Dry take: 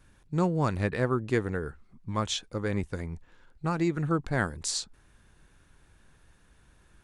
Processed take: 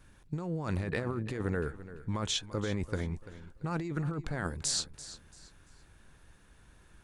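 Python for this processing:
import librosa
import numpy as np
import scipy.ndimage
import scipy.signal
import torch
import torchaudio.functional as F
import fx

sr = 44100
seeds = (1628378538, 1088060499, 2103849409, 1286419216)

y = fx.over_compress(x, sr, threshold_db=-31.0, ratio=-1.0)
y = fx.echo_feedback(y, sr, ms=339, feedback_pct=30, wet_db=-15.0)
y = y * 10.0 ** (-2.0 / 20.0)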